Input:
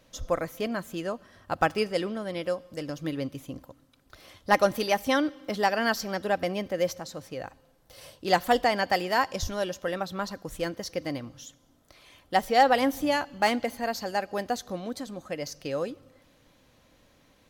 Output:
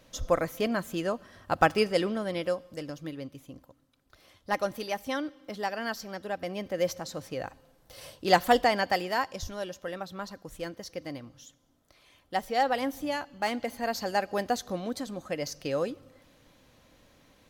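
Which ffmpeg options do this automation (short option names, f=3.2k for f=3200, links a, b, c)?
-af "volume=18dB,afade=t=out:st=2.2:d=0.95:silence=0.334965,afade=t=in:st=6.39:d=0.75:silence=0.354813,afade=t=out:st=8.42:d=0.93:silence=0.421697,afade=t=in:st=13.48:d=0.59:silence=0.446684"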